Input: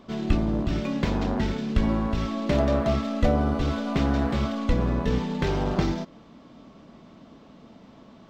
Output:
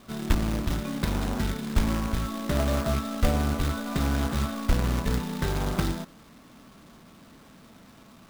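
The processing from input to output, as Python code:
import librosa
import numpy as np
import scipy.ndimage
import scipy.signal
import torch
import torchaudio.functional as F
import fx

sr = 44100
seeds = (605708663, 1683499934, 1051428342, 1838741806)

y = scipy.signal.sosfilt(scipy.signal.cheby1(6, 9, 5200.0, 'lowpass', fs=sr, output='sos'), x)
y = fx.low_shelf(y, sr, hz=220.0, db=9.5)
y = fx.quant_companded(y, sr, bits=4)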